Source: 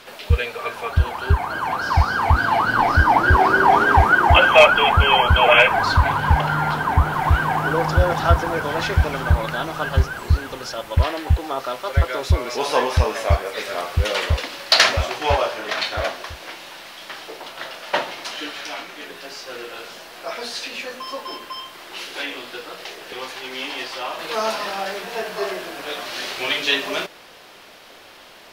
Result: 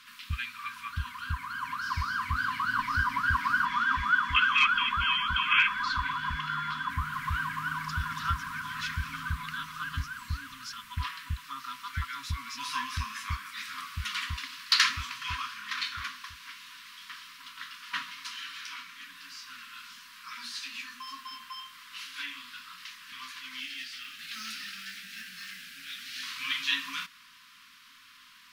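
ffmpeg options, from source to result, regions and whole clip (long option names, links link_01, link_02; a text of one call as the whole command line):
ffmpeg -i in.wav -filter_complex "[0:a]asettb=1/sr,asplit=3[link_01][link_02][link_03];[link_01]atrim=end=3.654[link_04];[link_02]atrim=start=3.65:end=6.9,asetpts=PTS-STARTPTS,afade=type=in:duration=0.004:curve=qsin,afade=type=out:start_time=3.246:duration=0.004:curve=qsin,equalizer=frequency=99:width_type=o:width=0.63:gain=-12.5,aeval=exprs='val(0)+0.0141*sin(2*PI*3400*n/s)':channel_layout=same,acrossover=split=6600[link_05][link_06];[link_06]acompressor=threshold=-57dB:ratio=4:attack=1:release=60[link_07];[link_05][link_07]amix=inputs=2:normalize=0[link_08];[link_03]atrim=start=6.896[link_09];[link_04][link_08]acrossfade=duration=0.004:curve1=hsin:curve2=qsin[link_10];[link_10][link_09]acrossfade=duration=0.004:curve1=qsin:curve2=hsin,asettb=1/sr,asplit=3[link_11][link_12][link_13];[link_11]atrim=end=23.604[link_14];[link_12]atrim=start=23.6:end=26.23,asetpts=PTS-STARTPTS,afade=type=in:duration=0.004:curve=qsin,afade=type=out:start_time=2.626:duration=0.004:curve=qsin,acrusher=bits=7:mode=log:mix=0:aa=0.000001,asuperstop=centerf=920:order=4:qfactor=0.85[link_15];[link_13]atrim=start=26.226[link_16];[link_14][link_15]acrossfade=duration=0.004:curve1=hsin:curve2=qsin[link_17];[link_17][link_16]acrossfade=duration=0.004:curve1=qsin:curve2=hsin,afftfilt=real='re*(1-between(b*sr/4096,280,960))':imag='im*(1-between(b*sr/4096,280,960))':win_size=4096:overlap=0.75,lowshelf=frequency=380:gain=-9,volume=-8.5dB" out.wav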